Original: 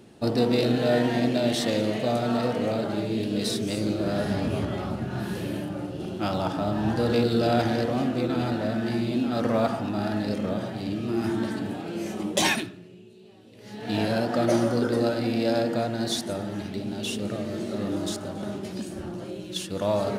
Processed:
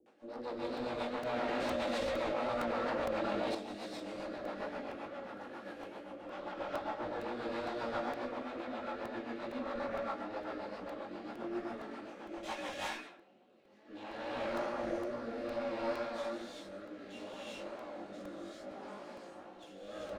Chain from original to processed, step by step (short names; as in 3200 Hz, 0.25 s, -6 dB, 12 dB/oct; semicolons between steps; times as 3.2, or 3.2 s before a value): minimum comb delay 3.6 ms; Bessel high-pass 180 Hz, order 2; non-linear reverb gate 0.43 s rising, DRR -6.5 dB; upward compressor, threshold -39 dBFS; three-band isolator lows -18 dB, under 400 Hz, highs -22 dB, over 6300 Hz; tube stage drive 15 dB, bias 0.35; bell 4500 Hz -11.5 dB 2.3 oct; bands offset in time lows, highs 60 ms, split 450 Hz; chorus 2.3 Hz, delay 16 ms, depth 4.9 ms; rotary speaker horn 7.5 Hz, later 0.65 Hz, at 12.4; crackling interface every 0.46 s, samples 128, repeat, from 0.77; 1.33–3.55 fast leveller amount 100%; gain -5 dB